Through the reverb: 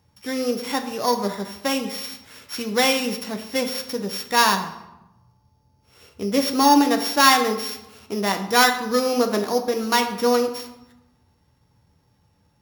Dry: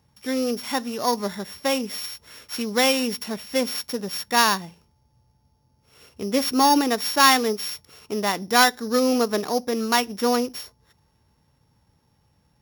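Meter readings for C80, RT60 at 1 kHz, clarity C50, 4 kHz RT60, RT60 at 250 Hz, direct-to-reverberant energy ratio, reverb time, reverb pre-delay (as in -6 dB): 12.0 dB, 1.0 s, 9.5 dB, 0.65 s, 1.1 s, 4.5 dB, 0.95 s, 10 ms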